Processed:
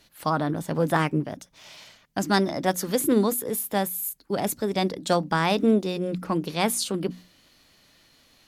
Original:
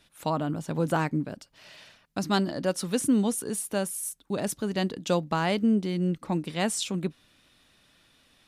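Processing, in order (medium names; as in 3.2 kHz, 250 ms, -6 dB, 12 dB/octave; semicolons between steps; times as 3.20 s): hum notches 60/120/180/240 Hz; formant shift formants +3 st; trim +3.5 dB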